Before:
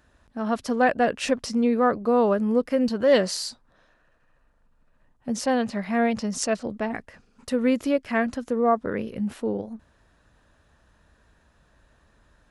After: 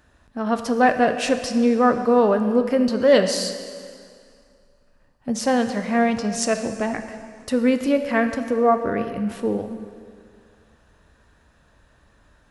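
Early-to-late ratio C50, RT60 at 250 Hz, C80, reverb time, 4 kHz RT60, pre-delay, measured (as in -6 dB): 8.5 dB, 2.2 s, 10.0 dB, 2.2 s, 2.1 s, 4 ms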